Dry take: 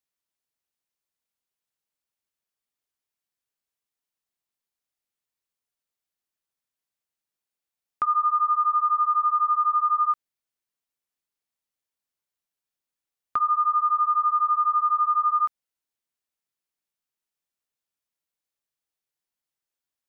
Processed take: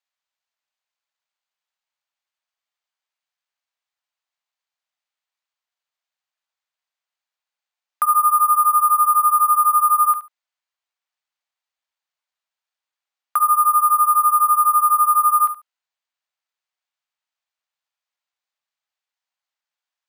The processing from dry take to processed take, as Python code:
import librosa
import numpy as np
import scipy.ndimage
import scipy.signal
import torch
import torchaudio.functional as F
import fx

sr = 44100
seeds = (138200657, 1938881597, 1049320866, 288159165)

p1 = scipy.signal.sosfilt(scipy.signal.butter(4, 650.0, 'highpass', fs=sr, output='sos'), x)
p2 = p1 + fx.echo_feedback(p1, sr, ms=71, feedback_pct=17, wet_db=-11.5, dry=0)
p3 = np.repeat(scipy.signal.resample_poly(p2, 1, 4), 4)[:len(p2)]
y = F.gain(torch.from_numpy(p3), 5.5).numpy()